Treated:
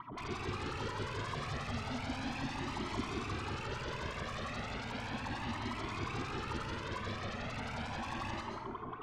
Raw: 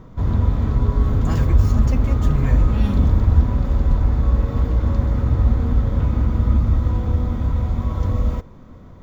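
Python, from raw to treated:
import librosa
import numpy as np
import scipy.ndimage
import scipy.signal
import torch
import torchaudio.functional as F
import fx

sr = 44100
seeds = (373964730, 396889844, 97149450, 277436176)

p1 = fx.rattle_buzz(x, sr, strikes_db=-17.0, level_db=-25.0)
p2 = fx.graphic_eq(p1, sr, hz=(125, 250, 500, 1000, 2000), db=(10, 10, -10, 9, -6))
p3 = fx.wah_lfo(p2, sr, hz=5.6, low_hz=350.0, high_hz=2700.0, q=12.0)
p4 = fx.fold_sine(p3, sr, drive_db=19, ceiling_db=-35.5)
p5 = p3 + (p4 * 10.0 ** (-4.0 / 20.0))
p6 = fx.air_absorb(p5, sr, metres=110.0)
p7 = fx.rev_plate(p6, sr, seeds[0], rt60_s=1.3, hf_ratio=0.5, predelay_ms=110, drr_db=1.5)
p8 = fx.comb_cascade(p7, sr, direction='rising', hz=0.35)
y = p8 * 10.0 ** (2.5 / 20.0)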